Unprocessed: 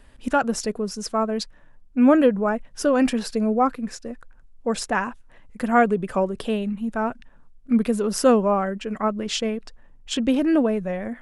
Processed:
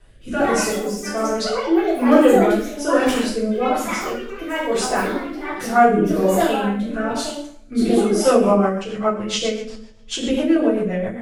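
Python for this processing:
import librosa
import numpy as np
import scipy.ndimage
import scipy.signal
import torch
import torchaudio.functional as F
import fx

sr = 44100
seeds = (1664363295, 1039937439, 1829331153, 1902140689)

y = fx.echo_pitch(x, sr, ms=193, semitones=5, count=3, db_per_echo=-6.0)
y = fx.rev_double_slope(y, sr, seeds[0], early_s=0.6, late_s=1.9, knee_db=-26, drr_db=-9.5)
y = fx.rotary_switch(y, sr, hz=1.2, then_hz=7.5, switch_at_s=7.8)
y = F.gain(torch.from_numpy(y), -4.5).numpy()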